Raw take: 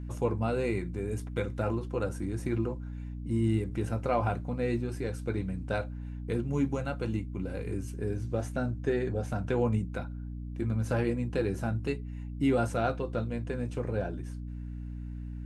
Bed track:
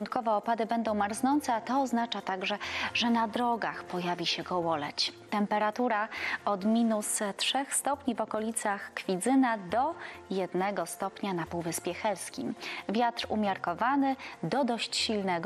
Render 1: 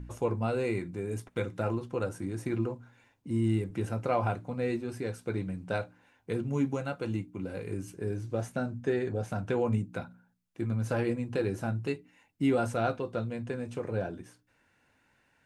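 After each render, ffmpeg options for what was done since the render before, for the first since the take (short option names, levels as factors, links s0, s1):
-af "bandreject=f=60:t=h:w=4,bandreject=f=120:t=h:w=4,bandreject=f=180:t=h:w=4,bandreject=f=240:t=h:w=4,bandreject=f=300:t=h:w=4"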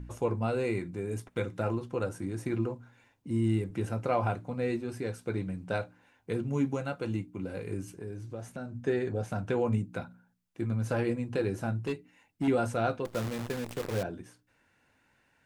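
-filter_complex "[0:a]asettb=1/sr,asplit=3[s0][s1][s2];[s0]atrim=end=7.844[s3];[s1]atrim=start=7.84:end=8.75,asetpts=PTS-STARTPTS,afade=t=in:d=0.004:c=qsin,afade=t=out:st=0.906:d=0.004:c=qsin,acompressor=threshold=0.00891:ratio=2:attack=3.2:release=140:knee=1:detection=peak[s4];[s2]atrim=start=8.746[s5];[s3][s4]acrossfade=d=0.004:c1=hsin:c2=qsin[s6];[s6][s5]acrossfade=d=0.004:c1=qsin:c2=hsin,asettb=1/sr,asplit=3[s7][s8][s9];[s7]atrim=end=11.784[s10];[s8]atrim=start=11.78:end=12.48,asetpts=PTS-STARTPTS,afade=t=in:d=0.004:c=qsin,afade=t=out:st=0.696:d=0.004:c=qsin,asoftclip=type=hard:threshold=0.0531[s11];[s9]atrim=start=12.476[s12];[s10][s11]acrossfade=d=0.004:c1=hsin:c2=qsin[s13];[s13][s12]acrossfade=d=0.004:c1=qsin:c2=hsin,asettb=1/sr,asplit=3[s14][s15][s16];[s14]atrim=end=13.054[s17];[s15]atrim=start=13.05:end=14.03,asetpts=PTS-STARTPTS,afade=t=in:d=0.004:c=qsin,afade=t=out:st=0.976:d=0.004:c=qsin,acrusher=bits=7:dc=4:mix=0:aa=0.000001[s18];[s16]atrim=start=14.026[s19];[s17][s18]acrossfade=d=0.004:c1=hsin:c2=qsin[s20];[s20][s19]acrossfade=d=0.004:c1=qsin:c2=hsin"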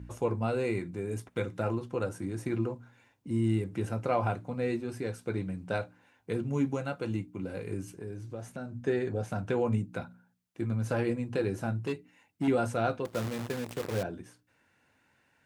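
-af "highpass=59"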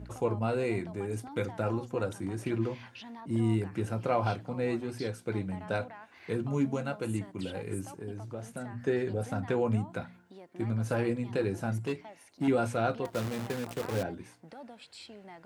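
-filter_complex "[1:a]volume=0.112[s0];[0:a][s0]amix=inputs=2:normalize=0"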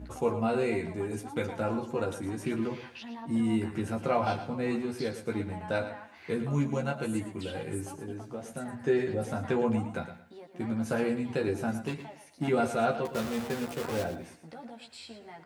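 -filter_complex "[0:a]asplit=2[s0][s1];[s1]adelay=13,volume=0.75[s2];[s0][s2]amix=inputs=2:normalize=0,aecho=1:1:113|226|339:0.282|0.062|0.0136"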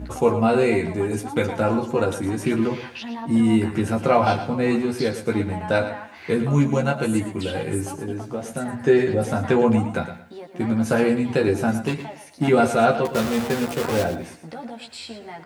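-af "volume=3.16"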